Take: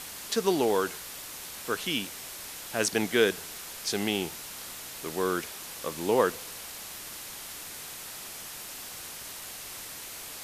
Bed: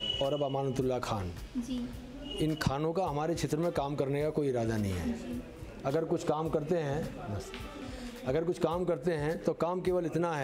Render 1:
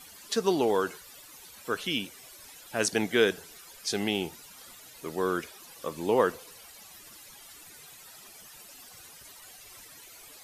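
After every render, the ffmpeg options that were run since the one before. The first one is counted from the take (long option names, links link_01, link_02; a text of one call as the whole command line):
ffmpeg -i in.wav -af "afftdn=noise_reduction=14:noise_floor=-42" out.wav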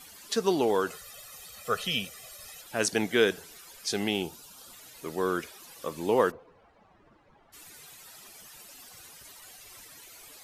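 ffmpeg -i in.wav -filter_complex "[0:a]asettb=1/sr,asplit=3[link_01][link_02][link_03];[link_01]atrim=end=0.904[link_04];[link_02]atrim=start=0.9:end=2.62,asetpts=PTS-STARTPTS,afade=type=in:duration=0.004:curve=qsin,afade=type=out:start_time=1.716:duration=0.004:curve=qsin,aecho=1:1:1.6:0.95,atrim=end_sample=75852[link_05];[link_03]atrim=start=2.616[link_06];[link_04][link_05]acrossfade=duration=0.004:curve1=hsin:curve2=qsin[link_07];[link_07][link_06]acrossfade=duration=0.004:curve1=qsin:curve2=hsin,asettb=1/sr,asplit=3[link_08][link_09][link_10];[link_08]atrim=end=4.224[link_11];[link_09]atrim=start=4.22:end=4.73,asetpts=PTS-STARTPTS,afade=type=in:duration=0.004:curve=qsin,afade=type=out:start_time=0.506:duration=0.004:curve=qsin,equalizer=frequency=2000:width_type=o:width=0.39:gain=-14[link_12];[link_10]atrim=start=4.726[link_13];[link_11][link_12]acrossfade=duration=0.004:curve1=hsin:curve2=qsin[link_14];[link_14][link_13]acrossfade=duration=0.004:curve1=qsin:curve2=hsin,asplit=3[link_15][link_16][link_17];[link_15]afade=type=out:start_time=6.3:duration=0.02[link_18];[link_16]lowpass=1000,afade=type=in:start_time=6.3:duration=0.02,afade=type=out:start_time=7.52:duration=0.02[link_19];[link_17]afade=type=in:start_time=7.52:duration=0.02[link_20];[link_18][link_19][link_20]amix=inputs=3:normalize=0" out.wav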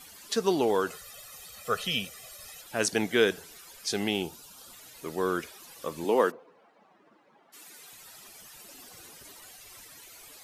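ffmpeg -i in.wav -filter_complex "[0:a]asettb=1/sr,asplit=3[link_01][link_02][link_03];[link_01]atrim=end=6.044[link_04];[link_02]atrim=start=6.04:end=7.93,asetpts=PTS-STARTPTS,afade=type=in:duration=0.004:curve=qsin,afade=type=out:start_time=1.886:duration=0.004:curve=qsin,highpass=frequency=190:width=0.5412,highpass=frequency=190:width=1.3066[link_05];[link_03]atrim=start=7.926[link_06];[link_04][link_05]acrossfade=duration=0.004:curve1=hsin:curve2=qsin[link_07];[link_07][link_06]acrossfade=duration=0.004:curve1=qsin:curve2=hsin,asettb=1/sr,asplit=3[link_08][link_09][link_10];[link_08]atrim=end=8.644[link_11];[link_09]atrim=start=8.64:end=9.47,asetpts=PTS-STARTPTS,afade=type=in:duration=0.004:curve=qsin,afade=type=out:start_time=0.826:duration=0.004:curve=qsin,equalizer=frequency=330:width_type=o:width=1.5:gain=7.5[link_12];[link_10]atrim=start=9.466[link_13];[link_11][link_12]acrossfade=duration=0.004:curve1=hsin:curve2=qsin[link_14];[link_14][link_13]acrossfade=duration=0.004:curve1=qsin:curve2=hsin" out.wav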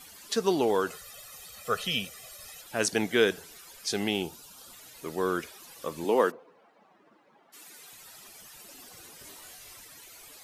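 ffmpeg -i in.wav -filter_complex "[0:a]asettb=1/sr,asplit=3[link_01][link_02][link_03];[link_01]atrim=end=9.174[link_04];[link_02]atrim=start=9.17:end=9.74,asetpts=PTS-STARTPTS,afade=type=in:duration=0.004:curve=qsin,afade=type=out:start_time=0.566:duration=0.004:curve=qsin,asplit=2[link_05][link_06];[link_06]adelay=23,volume=-4dB[link_07];[link_05][link_07]amix=inputs=2:normalize=0,atrim=end_sample=25137[link_08];[link_03]atrim=start=9.736[link_09];[link_04][link_08]acrossfade=duration=0.004:curve1=hsin:curve2=qsin[link_10];[link_10][link_09]acrossfade=duration=0.004:curve1=qsin:curve2=hsin" out.wav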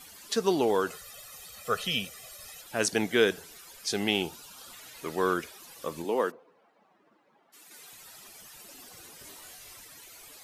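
ffmpeg -i in.wav -filter_complex "[0:a]asettb=1/sr,asplit=3[link_01][link_02][link_03];[link_01]atrim=end=4.084[link_04];[link_02]atrim=start=4.08:end=5.34,asetpts=PTS-STARTPTS,afade=type=in:duration=0.004:curve=qsin,afade=type=out:start_time=1.256:duration=0.004:curve=qsin,equalizer=frequency=1900:width_type=o:width=2.6:gain=5[link_05];[link_03]atrim=start=5.336[link_06];[link_04][link_05]acrossfade=duration=0.004:curve1=hsin:curve2=qsin[link_07];[link_07][link_06]acrossfade=duration=0.004:curve1=qsin:curve2=hsin,asplit=3[link_08][link_09][link_10];[link_08]atrim=end=6.022[link_11];[link_09]atrim=start=6.018:end=7.712,asetpts=PTS-STARTPTS,volume=-4dB[link_12];[link_10]atrim=start=7.708[link_13];[link_11][link_12]acrossfade=duration=0.004:curve1=hsin:curve2=hsin[link_14];[link_14][link_13]acrossfade=duration=0.004:curve1=hsin:curve2=hsin" out.wav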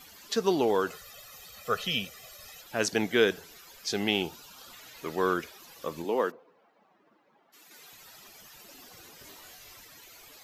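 ffmpeg -i in.wav -af "equalizer=frequency=9300:width_type=o:width=0.39:gain=-12" out.wav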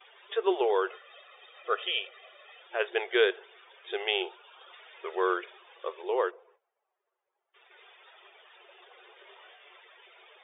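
ffmpeg -i in.wav -af "agate=range=-18dB:threshold=-59dB:ratio=16:detection=peak,afftfilt=real='re*between(b*sr/4096,350,3700)':imag='im*between(b*sr/4096,350,3700)':win_size=4096:overlap=0.75" out.wav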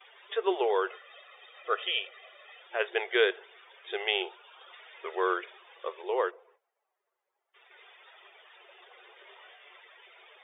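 ffmpeg -i in.wav -af "highpass=330,equalizer=frequency=2000:width_type=o:width=0.23:gain=3.5" out.wav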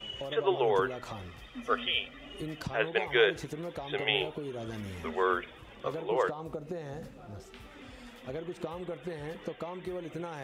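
ffmpeg -i in.wav -i bed.wav -filter_complex "[1:a]volume=-8dB[link_01];[0:a][link_01]amix=inputs=2:normalize=0" out.wav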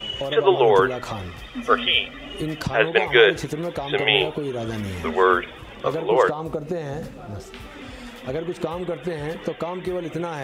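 ffmpeg -i in.wav -af "volume=11dB,alimiter=limit=-1dB:level=0:latency=1" out.wav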